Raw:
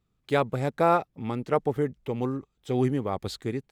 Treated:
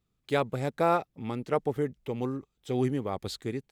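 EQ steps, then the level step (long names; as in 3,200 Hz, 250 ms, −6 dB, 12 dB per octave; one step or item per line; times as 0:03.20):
low-shelf EQ 320 Hz −4 dB
parametric band 1,100 Hz −3.5 dB 2.1 octaves
0.0 dB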